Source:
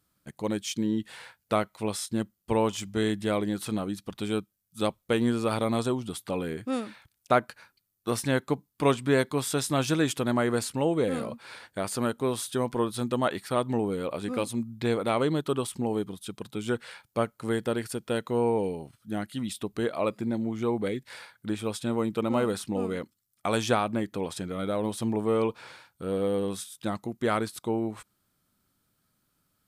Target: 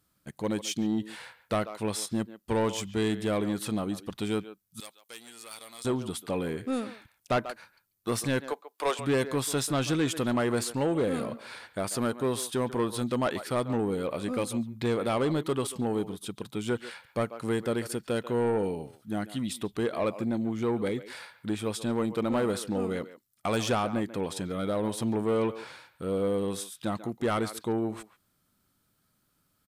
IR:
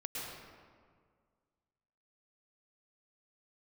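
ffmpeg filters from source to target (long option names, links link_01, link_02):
-filter_complex "[0:a]asettb=1/sr,asplit=3[link_01][link_02][link_03];[link_01]atrim=end=8.464[link_04];[link_02]atrim=start=8.46:end=8.99,asetpts=PTS-STARTPTS,afade=type=in:duration=0.004:curve=qsin,afade=type=out:start_time=0.526:duration=0.004:curve=qsin,highpass=frequency=460:width=0.5412,highpass=frequency=460:width=1.3066[link_05];[link_03]atrim=start=8.986[link_06];[link_04][link_05]acrossfade=duration=0.004:curve1=hsin:curve2=qsin[link_07];[link_07][link_06]acrossfade=duration=0.004:curve1=qsin:curve2=hsin,asettb=1/sr,asplit=3[link_08][link_09][link_10];[link_08]atrim=end=9.694[link_11];[link_09]atrim=start=9.69:end=10.12,asetpts=PTS-STARTPTS,afade=type=in:duration=0.004:curve=qsin,afade=type=out:start_time=0.426:duration=0.004:curve=qsin,highshelf=frequency=9200:gain=-7.5[link_12];[link_10]atrim=start=10.116[link_13];[link_11][link_12]acrossfade=duration=0.004:curve1=hsin:curve2=qsin[link_14];[link_14][link_13]acrossfade=duration=0.004:curve1=qsin:curve2=hsin,asplit=2[link_15][link_16];[link_16]adelay=140,highpass=300,lowpass=3400,asoftclip=type=hard:threshold=-16dB,volume=-15dB[link_17];[link_15][link_17]amix=inputs=2:normalize=0,asoftclip=type=tanh:threshold=-21dB,asettb=1/sr,asplit=3[link_18][link_19][link_20];[link_18]atrim=end=4.804[link_21];[link_19]atrim=start=4.8:end=5.85,asetpts=PTS-STARTPTS,afade=type=in:duration=0.004:curve=qsin,afade=type=out:start_time=1.046:duration=0.004:curve=qsin,aderivative[link_22];[link_20]atrim=start=5.846[link_23];[link_21][link_22]acrossfade=duration=0.004:curve1=hsin:curve2=qsin[link_24];[link_24][link_23]acrossfade=duration=0.004:curve1=qsin:curve2=hsin,volume=1dB"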